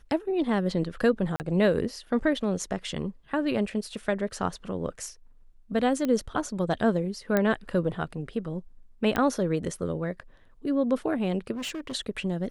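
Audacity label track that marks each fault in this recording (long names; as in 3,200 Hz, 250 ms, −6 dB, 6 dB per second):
1.360000	1.400000	drop-out 39 ms
6.050000	6.050000	click −16 dBFS
7.370000	7.370000	click −11 dBFS
9.160000	9.160000	click −14 dBFS
11.540000	11.950000	clipping −30.5 dBFS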